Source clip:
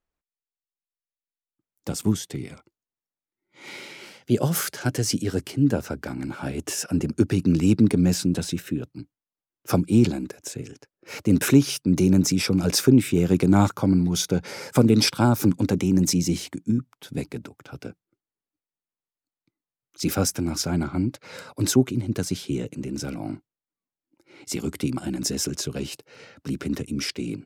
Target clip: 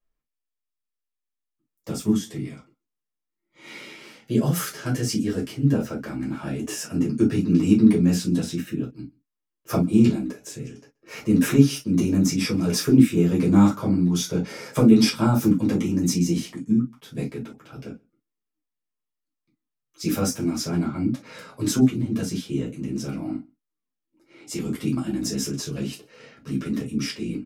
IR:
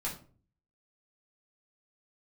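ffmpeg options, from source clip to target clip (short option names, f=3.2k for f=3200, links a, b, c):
-filter_complex "[0:a]asplit=2[a][b];[b]adelay=128.3,volume=-28dB,highshelf=f=4k:g=-2.89[c];[a][c]amix=inputs=2:normalize=0[d];[1:a]atrim=start_sample=2205,atrim=end_sample=4410,asetrate=61740,aresample=44100[e];[d][e]afir=irnorm=-1:irlink=0,volume=-1dB"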